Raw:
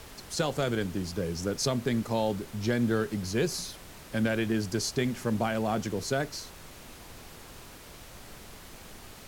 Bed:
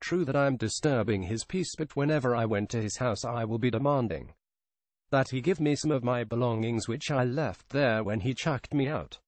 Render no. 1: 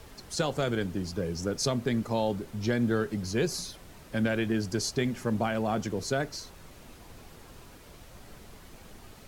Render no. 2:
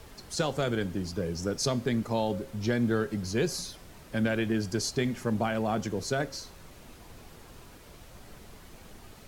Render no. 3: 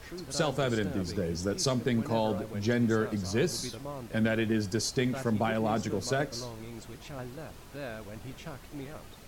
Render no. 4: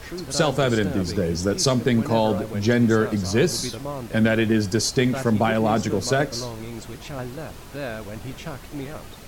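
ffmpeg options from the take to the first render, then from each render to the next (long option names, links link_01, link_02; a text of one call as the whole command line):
ffmpeg -i in.wav -af "afftdn=noise_reduction=6:noise_floor=-48" out.wav
ffmpeg -i in.wav -af "bandreject=frequency=270.1:width_type=h:width=4,bandreject=frequency=540.2:width_type=h:width=4,bandreject=frequency=810.3:width_type=h:width=4,bandreject=frequency=1080.4:width_type=h:width=4,bandreject=frequency=1350.5:width_type=h:width=4,bandreject=frequency=1620.6:width_type=h:width=4,bandreject=frequency=1890.7:width_type=h:width=4,bandreject=frequency=2160.8:width_type=h:width=4,bandreject=frequency=2430.9:width_type=h:width=4,bandreject=frequency=2701:width_type=h:width=4,bandreject=frequency=2971.1:width_type=h:width=4,bandreject=frequency=3241.2:width_type=h:width=4,bandreject=frequency=3511.3:width_type=h:width=4,bandreject=frequency=3781.4:width_type=h:width=4,bandreject=frequency=4051.5:width_type=h:width=4,bandreject=frequency=4321.6:width_type=h:width=4,bandreject=frequency=4591.7:width_type=h:width=4,bandreject=frequency=4861.8:width_type=h:width=4,bandreject=frequency=5131.9:width_type=h:width=4,bandreject=frequency=5402:width_type=h:width=4,bandreject=frequency=5672.1:width_type=h:width=4,bandreject=frequency=5942.2:width_type=h:width=4,bandreject=frequency=6212.3:width_type=h:width=4,bandreject=frequency=6482.4:width_type=h:width=4,bandreject=frequency=6752.5:width_type=h:width=4,bandreject=frequency=7022.6:width_type=h:width=4,bandreject=frequency=7292.7:width_type=h:width=4,bandreject=frequency=7562.8:width_type=h:width=4,bandreject=frequency=7832.9:width_type=h:width=4,bandreject=frequency=8103:width_type=h:width=4,bandreject=frequency=8373.1:width_type=h:width=4,bandreject=frequency=8643.2:width_type=h:width=4,bandreject=frequency=8913.3:width_type=h:width=4,bandreject=frequency=9183.4:width_type=h:width=4,bandreject=frequency=9453.5:width_type=h:width=4,bandreject=frequency=9723.6:width_type=h:width=4" out.wav
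ffmpeg -i in.wav -i bed.wav -filter_complex "[1:a]volume=-14dB[link_01];[0:a][link_01]amix=inputs=2:normalize=0" out.wav
ffmpeg -i in.wav -af "volume=8.5dB" out.wav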